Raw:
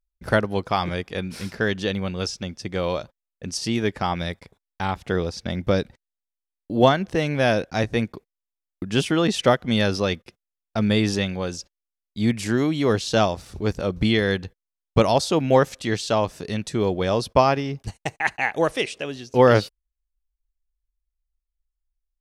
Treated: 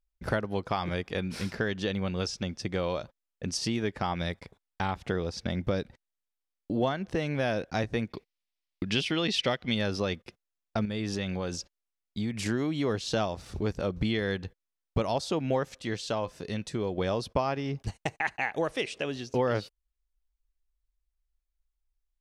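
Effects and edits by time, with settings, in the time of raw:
8.1–9.75 band shelf 3300 Hz +9 dB
10.85–12.46 compressor 3:1, threshold -28 dBFS
15.78–16.98 resonator 510 Hz, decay 0.15 s, mix 50%
whole clip: high shelf 8600 Hz -8 dB; compressor 3:1, threshold -28 dBFS

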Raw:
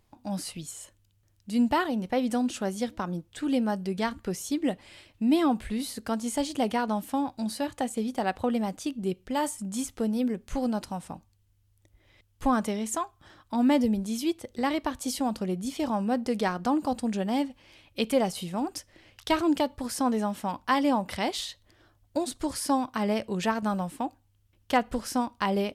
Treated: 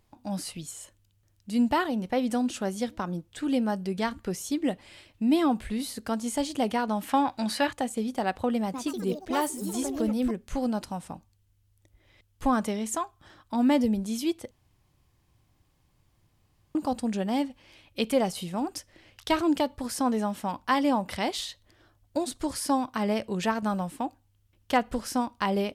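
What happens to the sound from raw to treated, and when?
7.01–7.73 bell 1800 Hz +12.5 dB 2.6 oct
8.61–10.59 echoes that change speed 0.128 s, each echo +4 st, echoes 3, each echo -6 dB
14.51–16.75 room tone

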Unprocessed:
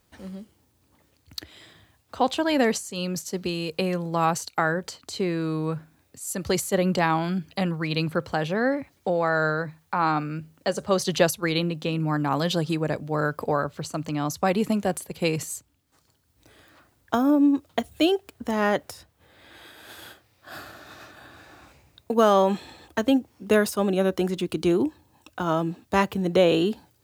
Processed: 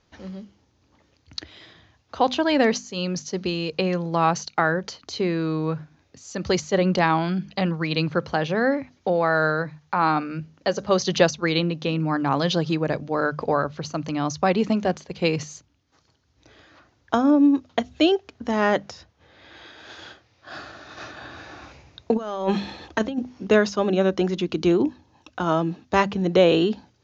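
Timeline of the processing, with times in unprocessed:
20.97–23.47 negative-ratio compressor -24 dBFS, ratio -0.5
whole clip: steep low-pass 6700 Hz 96 dB/oct; notches 50/100/150/200/250 Hz; gain +2.5 dB

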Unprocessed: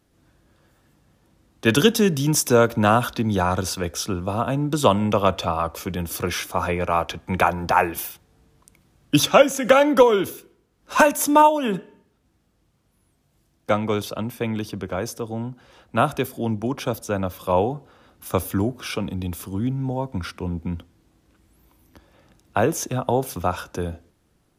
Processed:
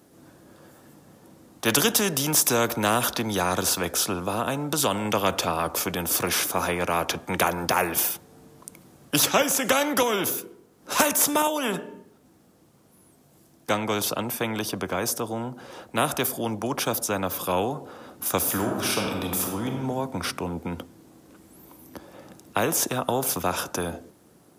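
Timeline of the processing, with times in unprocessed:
4.24–5.05 compressor 1.5:1, threshold -22 dBFS
18.38–19.83 reverb throw, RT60 1.1 s, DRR 3 dB
whole clip: Bessel high-pass 220 Hz, order 2; bell 2700 Hz -8.5 dB 2.5 oct; spectral compressor 2:1

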